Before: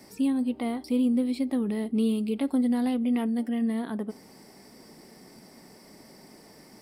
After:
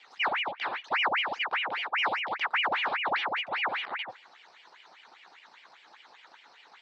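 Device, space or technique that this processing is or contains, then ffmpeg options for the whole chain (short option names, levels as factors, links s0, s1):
voice changer toy: -af "aeval=exprs='val(0)*sin(2*PI*1500*n/s+1500*0.8/5*sin(2*PI*5*n/s))':c=same,highpass=490,equalizer=f=580:t=q:w=4:g=-6,equalizer=f=870:t=q:w=4:g=5,equalizer=f=2600:t=q:w=4:g=-3,equalizer=f=3900:t=q:w=4:g=4,lowpass=f=4700:w=0.5412,lowpass=f=4700:w=1.3066"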